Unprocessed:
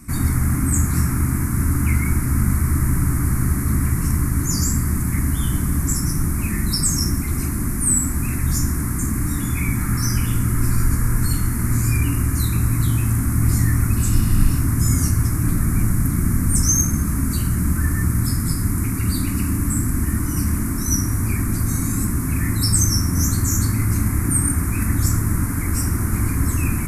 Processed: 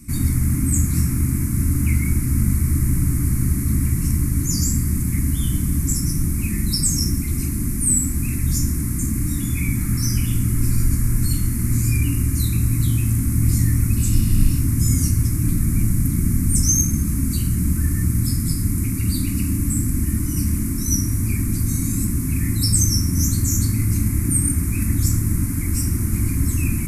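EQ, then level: high-order bell 870 Hz -11.5 dB 2.3 oct; 0.0 dB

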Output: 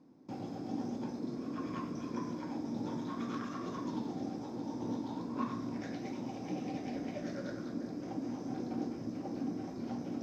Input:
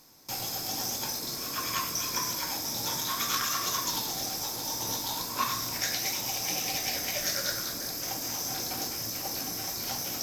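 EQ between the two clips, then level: band-pass filter 250 Hz, Q 2.4; distance through air 53 m; +9.5 dB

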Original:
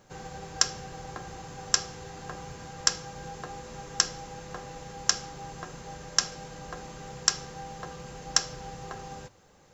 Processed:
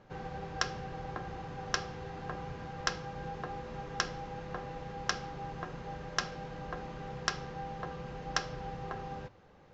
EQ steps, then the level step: distance through air 260 m; +1.0 dB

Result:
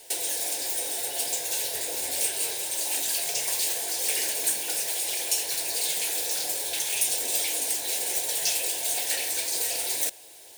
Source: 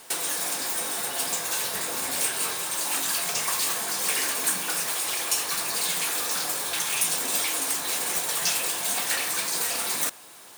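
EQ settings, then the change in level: static phaser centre 500 Hz, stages 4; 0.0 dB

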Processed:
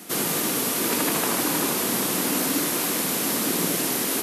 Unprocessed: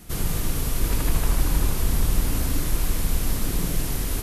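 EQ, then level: high-pass 220 Hz 24 dB/octave; +7.5 dB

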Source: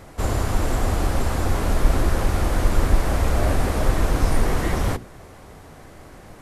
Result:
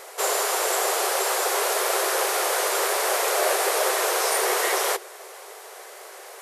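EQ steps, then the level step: brick-wall FIR high-pass 360 Hz; treble shelf 2.9 kHz +7.5 dB; treble shelf 11 kHz +4.5 dB; +3.5 dB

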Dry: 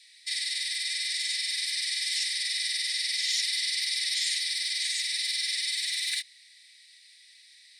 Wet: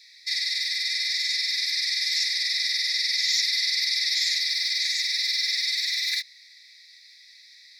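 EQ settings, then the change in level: treble shelf 8.5 kHz +5.5 dB; static phaser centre 2 kHz, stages 8; +5.0 dB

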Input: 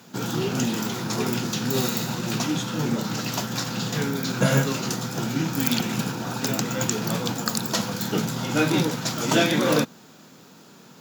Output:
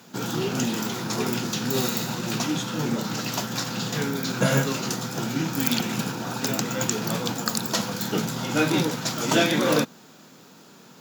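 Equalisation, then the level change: bass shelf 110 Hz -6 dB; 0.0 dB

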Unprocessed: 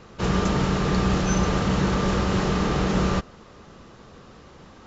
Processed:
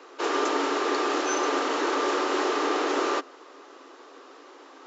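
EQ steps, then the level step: rippled Chebyshev high-pass 270 Hz, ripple 3 dB; +2.5 dB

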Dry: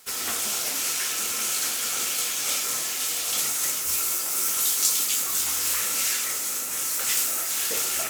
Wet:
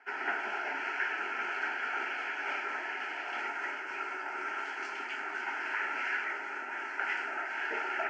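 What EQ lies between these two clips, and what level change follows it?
distance through air 63 m; cabinet simulation 360–3100 Hz, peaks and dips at 420 Hz +8 dB, 930 Hz +10 dB, 1.5 kHz +10 dB; static phaser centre 750 Hz, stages 8; 0.0 dB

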